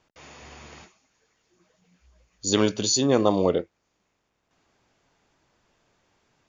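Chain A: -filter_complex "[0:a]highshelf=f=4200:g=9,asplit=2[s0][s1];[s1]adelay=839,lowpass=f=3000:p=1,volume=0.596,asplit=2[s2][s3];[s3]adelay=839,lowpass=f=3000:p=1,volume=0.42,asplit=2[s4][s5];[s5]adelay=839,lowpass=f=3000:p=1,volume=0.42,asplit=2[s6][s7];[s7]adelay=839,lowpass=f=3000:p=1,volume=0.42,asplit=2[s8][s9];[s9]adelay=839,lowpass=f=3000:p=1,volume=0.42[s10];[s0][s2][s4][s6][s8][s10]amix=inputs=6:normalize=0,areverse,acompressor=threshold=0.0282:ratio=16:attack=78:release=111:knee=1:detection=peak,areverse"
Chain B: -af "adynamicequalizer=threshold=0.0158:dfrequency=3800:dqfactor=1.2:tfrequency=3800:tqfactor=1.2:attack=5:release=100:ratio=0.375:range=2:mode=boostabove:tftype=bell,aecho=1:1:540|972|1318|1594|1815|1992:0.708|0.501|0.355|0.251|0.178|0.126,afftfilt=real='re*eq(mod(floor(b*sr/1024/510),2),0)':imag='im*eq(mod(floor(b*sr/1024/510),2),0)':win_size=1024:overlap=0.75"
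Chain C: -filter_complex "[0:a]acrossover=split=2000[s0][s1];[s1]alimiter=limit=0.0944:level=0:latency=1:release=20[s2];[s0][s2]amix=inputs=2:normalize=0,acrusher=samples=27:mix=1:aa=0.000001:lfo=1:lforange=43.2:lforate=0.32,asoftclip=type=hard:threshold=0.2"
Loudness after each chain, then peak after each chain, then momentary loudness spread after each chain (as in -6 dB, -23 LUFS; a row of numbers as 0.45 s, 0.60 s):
-31.0 LUFS, -24.0 LUFS, -24.5 LUFS; -12.5 dBFS, -6.5 dBFS, -14.0 dBFS; 21 LU, 15 LU, 7 LU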